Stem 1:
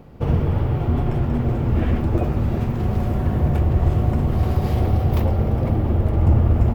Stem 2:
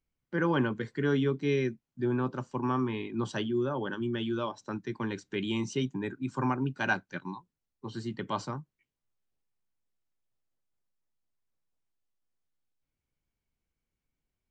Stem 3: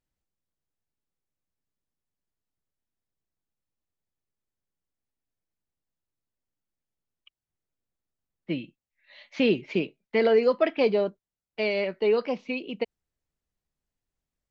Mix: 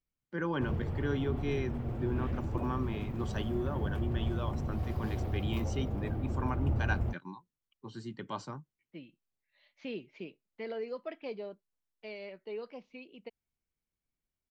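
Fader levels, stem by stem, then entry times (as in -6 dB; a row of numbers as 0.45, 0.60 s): -15.5, -6.0, -17.5 dB; 0.40, 0.00, 0.45 s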